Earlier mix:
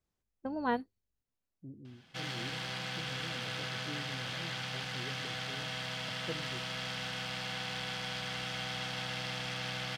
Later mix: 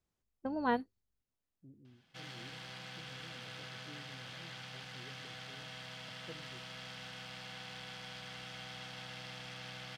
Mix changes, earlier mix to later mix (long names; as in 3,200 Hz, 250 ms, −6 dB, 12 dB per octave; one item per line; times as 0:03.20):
second voice −9.5 dB
background −9.0 dB